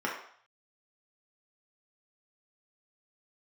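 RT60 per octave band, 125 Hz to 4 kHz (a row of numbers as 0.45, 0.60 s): 0.65, 0.40, 0.55, 0.65, 0.60, 0.60 s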